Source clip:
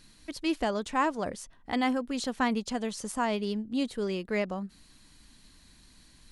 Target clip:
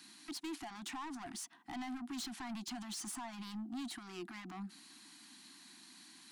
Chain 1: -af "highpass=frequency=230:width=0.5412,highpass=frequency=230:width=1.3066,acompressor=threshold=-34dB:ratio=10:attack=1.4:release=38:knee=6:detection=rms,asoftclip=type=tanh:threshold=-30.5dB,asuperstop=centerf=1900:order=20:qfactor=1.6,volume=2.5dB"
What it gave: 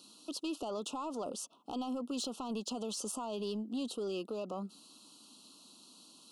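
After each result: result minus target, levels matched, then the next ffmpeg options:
2,000 Hz band −11.5 dB; soft clipping: distortion −13 dB
-af "highpass=frequency=230:width=0.5412,highpass=frequency=230:width=1.3066,acompressor=threshold=-34dB:ratio=10:attack=1.4:release=38:knee=6:detection=rms,asoftclip=type=tanh:threshold=-30.5dB,asuperstop=centerf=500:order=20:qfactor=1.6,volume=2.5dB"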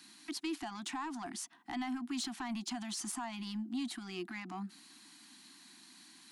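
soft clipping: distortion −13 dB
-af "highpass=frequency=230:width=0.5412,highpass=frequency=230:width=1.3066,acompressor=threshold=-34dB:ratio=10:attack=1.4:release=38:knee=6:detection=rms,asoftclip=type=tanh:threshold=-41.5dB,asuperstop=centerf=500:order=20:qfactor=1.6,volume=2.5dB"

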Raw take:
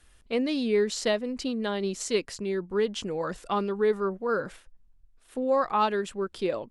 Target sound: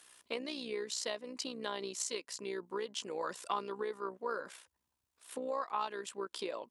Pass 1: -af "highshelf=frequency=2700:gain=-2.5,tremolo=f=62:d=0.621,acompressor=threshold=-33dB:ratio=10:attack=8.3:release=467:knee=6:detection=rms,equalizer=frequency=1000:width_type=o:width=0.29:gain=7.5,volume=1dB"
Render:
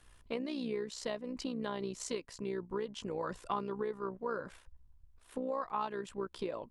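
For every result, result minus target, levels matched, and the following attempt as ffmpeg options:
4,000 Hz band −6.0 dB; 250 Hz band +6.0 dB
-af "highshelf=frequency=2700:gain=9,tremolo=f=62:d=0.621,acompressor=threshold=-33dB:ratio=10:attack=8.3:release=467:knee=6:detection=rms,equalizer=frequency=1000:width_type=o:width=0.29:gain=7.5,volume=1dB"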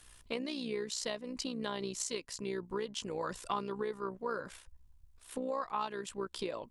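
250 Hz band +4.5 dB
-af "highshelf=frequency=2700:gain=9,tremolo=f=62:d=0.621,acompressor=threshold=-33dB:ratio=10:attack=8.3:release=467:knee=6:detection=rms,highpass=320,equalizer=frequency=1000:width_type=o:width=0.29:gain=7.5,volume=1dB"

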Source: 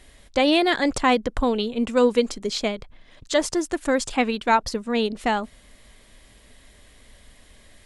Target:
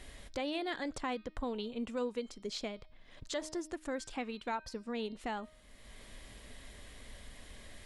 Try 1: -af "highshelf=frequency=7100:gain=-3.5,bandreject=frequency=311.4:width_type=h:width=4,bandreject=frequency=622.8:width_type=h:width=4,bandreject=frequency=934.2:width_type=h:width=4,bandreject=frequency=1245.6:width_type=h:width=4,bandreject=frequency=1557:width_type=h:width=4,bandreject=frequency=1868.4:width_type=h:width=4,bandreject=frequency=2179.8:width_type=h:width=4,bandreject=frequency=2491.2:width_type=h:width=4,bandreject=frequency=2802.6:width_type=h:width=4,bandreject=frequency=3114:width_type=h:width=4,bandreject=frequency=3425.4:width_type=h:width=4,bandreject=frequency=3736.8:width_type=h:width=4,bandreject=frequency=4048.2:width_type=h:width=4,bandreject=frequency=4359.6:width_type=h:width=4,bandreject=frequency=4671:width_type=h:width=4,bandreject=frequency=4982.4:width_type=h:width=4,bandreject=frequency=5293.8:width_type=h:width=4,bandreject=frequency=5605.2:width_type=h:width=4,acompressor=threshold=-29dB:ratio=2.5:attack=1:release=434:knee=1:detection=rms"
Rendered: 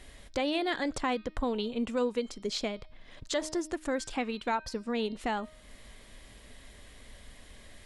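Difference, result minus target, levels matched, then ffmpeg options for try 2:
downward compressor: peak gain reduction −6.5 dB
-af "highshelf=frequency=7100:gain=-3.5,bandreject=frequency=311.4:width_type=h:width=4,bandreject=frequency=622.8:width_type=h:width=4,bandreject=frequency=934.2:width_type=h:width=4,bandreject=frequency=1245.6:width_type=h:width=4,bandreject=frequency=1557:width_type=h:width=4,bandreject=frequency=1868.4:width_type=h:width=4,bandreject=frequency=2179.8:width_type=h:width=4,bandreject=frequency=2491.2:width_type=h:width=4,bandreject=frequency=2802.6:width_type=h:width=4,bandreject=frequency=3114:width_type=h:width=4,bandreject=frequency=3425.4:width_type=h:width=4,bandreject=frequency=3736.8:width_type=h:width=4,bandreject=frequency=4048.2:width_type=h:width=4,bandreject=frequency=4359.6:width_type=h:width=4,bandreject=frequency=4671:width_type=h:width=4,bandreject=frequency=4982.4:width_type=h:width=4,bandreject=frequency=5293.8:width_type=h:width=4,bandreject=frequency=5605.2:width_type=h:width=4,acompressor=threshold=-40dB:ratio=2.5:attack=1:release=434:knee=1:detection=rms"

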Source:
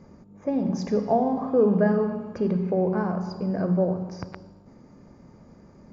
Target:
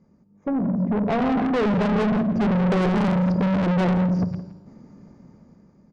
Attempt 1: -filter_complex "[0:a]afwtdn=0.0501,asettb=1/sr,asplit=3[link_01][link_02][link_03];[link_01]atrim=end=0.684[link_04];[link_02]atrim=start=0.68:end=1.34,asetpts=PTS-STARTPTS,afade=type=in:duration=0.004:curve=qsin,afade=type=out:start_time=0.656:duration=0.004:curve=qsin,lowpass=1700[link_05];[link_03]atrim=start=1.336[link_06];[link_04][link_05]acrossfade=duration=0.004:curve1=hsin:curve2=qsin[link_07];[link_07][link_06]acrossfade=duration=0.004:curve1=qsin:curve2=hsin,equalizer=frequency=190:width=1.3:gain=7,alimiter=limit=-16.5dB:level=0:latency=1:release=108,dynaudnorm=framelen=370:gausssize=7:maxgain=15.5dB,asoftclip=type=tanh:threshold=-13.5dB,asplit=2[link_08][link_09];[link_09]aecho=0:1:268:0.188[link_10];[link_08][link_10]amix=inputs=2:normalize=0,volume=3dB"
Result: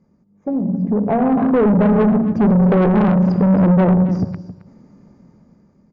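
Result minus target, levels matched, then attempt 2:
echo 101 ms late; soft clipping: distortion −5 dB
-filter_complex "[0:a]afwtdn=0.0501,asettb=1/sr,asplit=3[link_01][link_02][link_03];[link_01]atrim=end=0.684[link_04];[link_02]atrim=start=0.68:end=1.34,asetpts=PTS-STARTPTS,afade=type=in:duration=0.004:curve=qsin,afade=type=out:start_time=0.656:duration=0.004:curve=qsin,lowpass=1700[link_05];[link_03]atrim=start=1.336[link_06];[link_04][link_05]acrossfade=duration=0.004:curve1=hsin:curve2=qsin[link_07];[link_07][link_06]acrossfade=duration=0.004:curve1=qsin:curve2=hsin,equalizer=frequency=190:width=1.3:gain=7,alimiter=limit=-16.5dB:level=0:latency=1:release=108,dynaudnorm=framelen=370:gausssize=7:maxgain=15.5dB,asoftclip=type=tanh:threshold=-22.5dB,asplit=2[link_08][link_09];[link_09]aecho=0:1:167:0.188[link_10];[link_08][link_10]amix=inputs=2:normalize=0,volume=3dB"

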